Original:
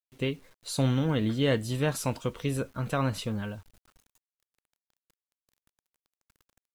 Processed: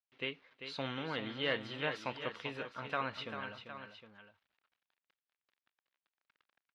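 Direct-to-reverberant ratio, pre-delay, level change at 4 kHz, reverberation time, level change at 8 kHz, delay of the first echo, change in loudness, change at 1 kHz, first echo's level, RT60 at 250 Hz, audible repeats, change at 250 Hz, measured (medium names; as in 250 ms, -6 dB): no reverb, no reverb, -3.5 dB, no reverb, -24.5 dB, 393 ms, -10.0 dB, -4.0 dB, -9.0 dB, no reverb, 2, -15.0 dB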